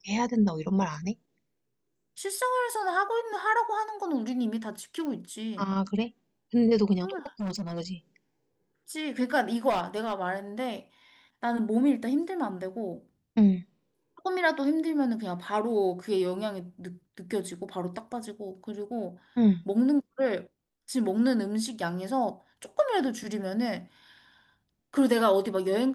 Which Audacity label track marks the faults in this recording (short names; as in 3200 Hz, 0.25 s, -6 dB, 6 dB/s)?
5.050000	5.050000	pop -25 dBFS
7.260000	7.810000	clipped -29 dBFS
9.690000	10.130000	clipped -23.5 dBFS